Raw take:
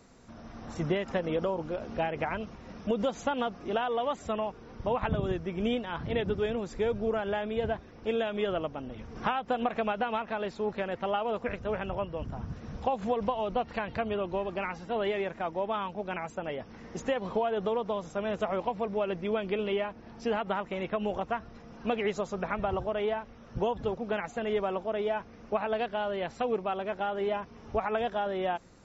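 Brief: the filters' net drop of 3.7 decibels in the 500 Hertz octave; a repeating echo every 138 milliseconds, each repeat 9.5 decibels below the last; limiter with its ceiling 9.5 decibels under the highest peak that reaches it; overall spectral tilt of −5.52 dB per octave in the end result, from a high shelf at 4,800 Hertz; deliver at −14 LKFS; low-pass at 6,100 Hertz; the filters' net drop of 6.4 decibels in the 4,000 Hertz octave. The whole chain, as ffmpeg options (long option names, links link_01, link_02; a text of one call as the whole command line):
ffmpeg -i in.wav -af "lowpass=6100,equalizer=frequency=500:width_type=o:gain=-4.5,equalizer=frequency=4000:width_type=o:gain=-7.5,highshelf=frequency=4800:gain=-4,alimiter=level_in=2.5dB:limit=-24dB:level=0:latency=1,volume=-2.5dB,aecho=1:1:138|276|414|552:0.335|0.111|0.0365|0.012,volume=22.5dB" out.wav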